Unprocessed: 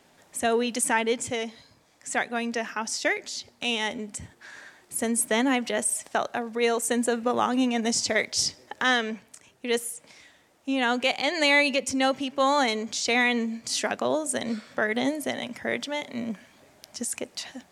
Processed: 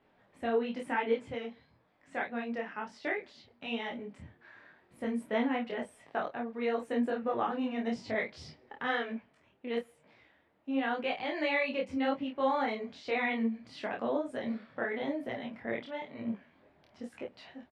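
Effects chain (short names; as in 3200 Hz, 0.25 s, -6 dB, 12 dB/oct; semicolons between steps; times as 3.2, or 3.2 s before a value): air absorption 420 m; doubler 26 ms -4 dB; detuned doubles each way 34 cents; gain -3.5 dB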